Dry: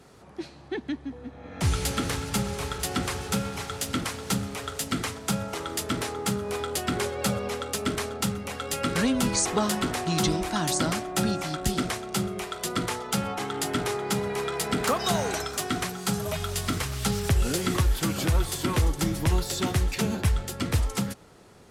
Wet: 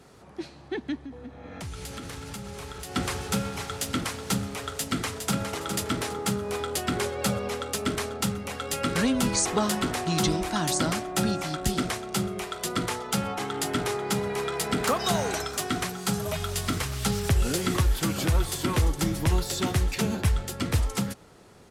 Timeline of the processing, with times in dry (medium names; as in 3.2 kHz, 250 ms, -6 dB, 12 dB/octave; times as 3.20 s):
1.00–2.96 s: compression 5:1, threshold -35 dBFS
4.71–5.52 s: echo throw 410 ms, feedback 30%, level -6.5 dB